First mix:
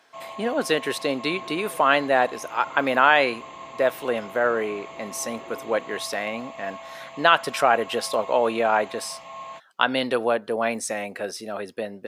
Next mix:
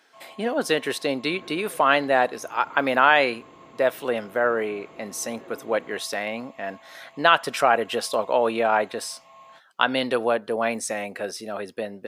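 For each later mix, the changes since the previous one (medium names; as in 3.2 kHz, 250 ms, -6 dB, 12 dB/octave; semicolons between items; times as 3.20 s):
first sound -11.0 dB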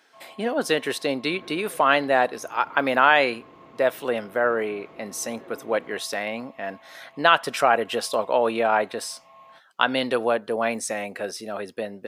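first sound: add distance through air 170 m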